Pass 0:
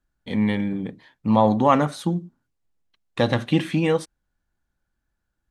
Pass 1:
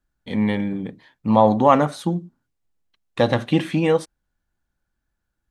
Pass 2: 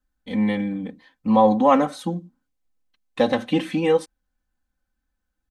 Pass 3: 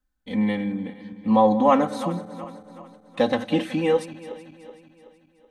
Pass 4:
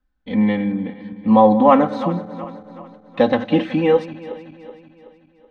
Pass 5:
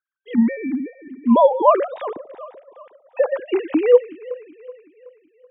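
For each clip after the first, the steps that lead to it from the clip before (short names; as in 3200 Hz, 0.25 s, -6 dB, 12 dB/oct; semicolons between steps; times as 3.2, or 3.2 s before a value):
dynamic EQ 640 Hz, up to +4 dB, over -31 dBFS, Q 0.84
comb 3.9 ms, depth 92%; gain -4.5 dB
regenerating reverse delay 0.188 s, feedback 67%, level -14 dB; gain -1.5 dB
air absorption 210 m; gain +6 dB
sine-wave speech; gain -1.5 dB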